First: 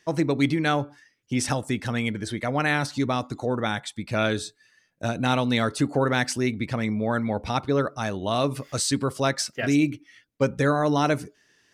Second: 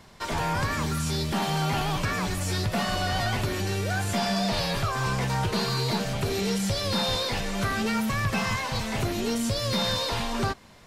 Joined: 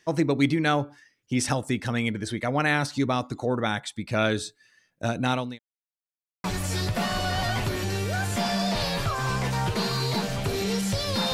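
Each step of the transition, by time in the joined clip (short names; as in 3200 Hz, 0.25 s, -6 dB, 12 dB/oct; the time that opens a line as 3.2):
first
5.08–5.59 fade out equal-power
5.59–6.44 mute
6.44 switch to second from 2.21 s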